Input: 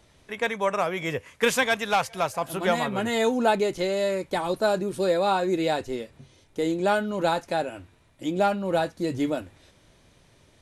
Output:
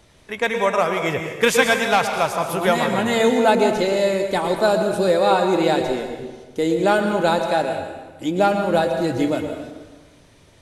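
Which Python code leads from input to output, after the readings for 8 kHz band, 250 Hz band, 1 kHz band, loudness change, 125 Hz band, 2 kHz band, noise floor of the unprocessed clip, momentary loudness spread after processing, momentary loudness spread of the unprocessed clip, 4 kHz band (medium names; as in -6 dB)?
+6.0 dB, +6.0 dB, +6.0 dB, +6.5 dB, +6.0 dB, +6.0 dB, -59 dBFS, 11 LU, 9 LU, +6.0 dB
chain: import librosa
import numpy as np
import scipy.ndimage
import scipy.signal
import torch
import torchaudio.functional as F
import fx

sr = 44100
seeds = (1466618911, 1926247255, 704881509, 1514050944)

y = fx.rev_plate(x, sr, seeds[0], rt60_s=1.3, hf_ratio=0.75, predelay_ms=100, drr_db=5.0)
y = F.gain(torch.from_numpy(y), 5.0).numpy()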